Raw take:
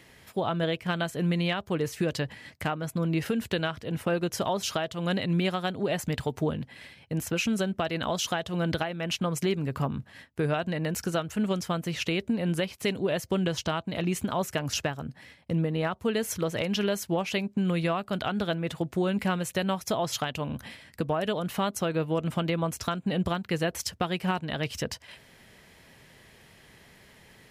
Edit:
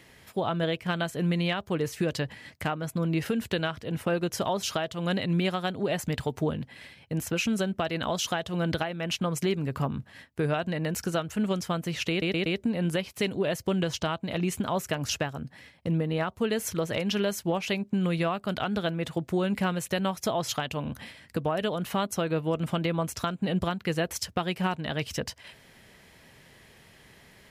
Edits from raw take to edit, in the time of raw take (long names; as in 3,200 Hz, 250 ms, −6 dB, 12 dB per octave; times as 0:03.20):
0:12.10: stutter 0.12 s, 4 plays